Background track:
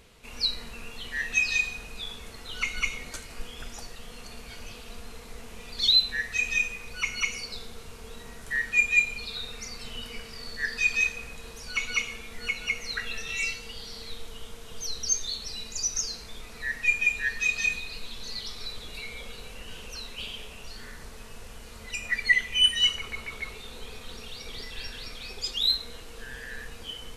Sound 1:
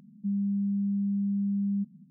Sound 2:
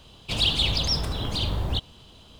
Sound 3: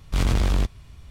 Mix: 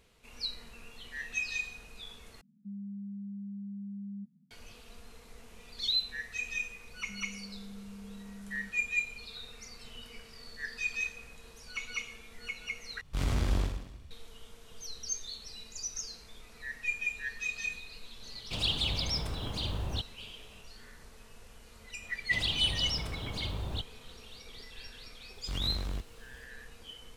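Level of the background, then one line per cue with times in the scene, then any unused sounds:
background track -9.5 dB
2.41 s: replace with 1 -13 dB
6.85 s: add 1 -11.5 dB + peak limiter -32 dBFS
13.01 s: replace with 3 -10 dB + reverse bouncing-ball echo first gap 50 ms, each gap 1.1×, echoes 6
18.22 s: add 2 -8 dB
22.02 s: add 2 -9.5 dB
25.35 s: add 3 -15 dB + bit crusher 8-bit

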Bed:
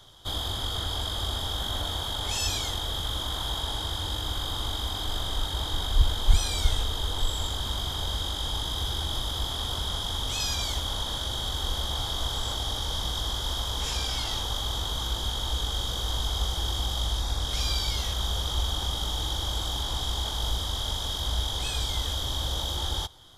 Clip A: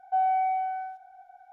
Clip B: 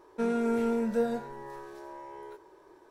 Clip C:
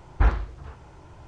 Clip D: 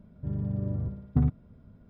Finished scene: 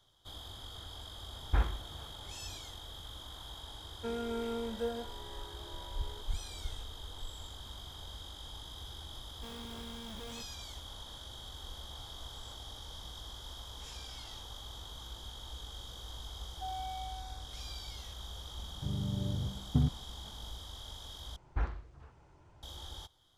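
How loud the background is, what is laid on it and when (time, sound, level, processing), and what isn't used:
bed -16.5 dB
1.33 s: add C -9 dB
3.85 s: add B -7.5 dB + high-pass 250 Hz
9.24 s: add B -15.5 dB + Schmitt trigger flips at -32.5 dBFS
16.49 s: add A -16.5 dB
18.59 s: add D -4.5 dB
21.36 s: replace with C -13.5 dB

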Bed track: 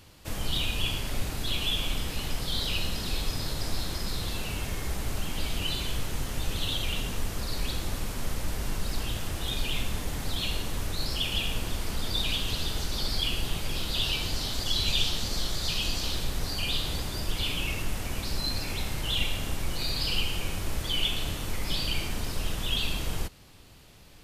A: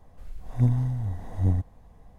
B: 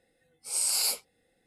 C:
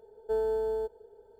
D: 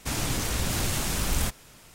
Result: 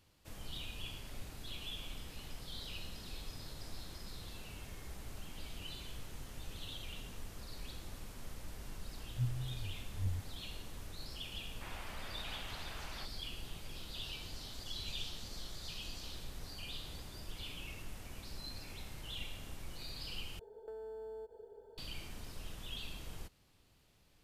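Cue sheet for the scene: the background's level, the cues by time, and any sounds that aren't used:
bed track -16 dB
8.59 s: add A -13.5 dB + resonances exaggerated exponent 3
11.55 s: add D -14 dB + mistuned SSB +77 Hz 500–3100 Hz
20.39 s: replace with C -0.5 dB + compression 16:1, threshold -43 dBFS
not used: B

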